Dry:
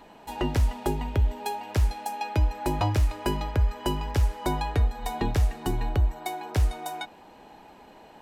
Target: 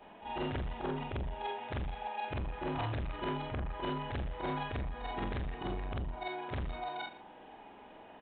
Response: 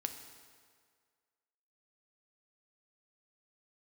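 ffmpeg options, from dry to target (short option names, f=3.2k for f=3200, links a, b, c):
-af "afftfilt=real='re':imag='-im':win_size=4096:overlap=0.75,aresample=8000,asoftclip=type=tanh:threshold=-31.5dB,aresample=44100,lowshelf=f=220:g=-5,aecho=1:1:115:0.141,volume=2dB"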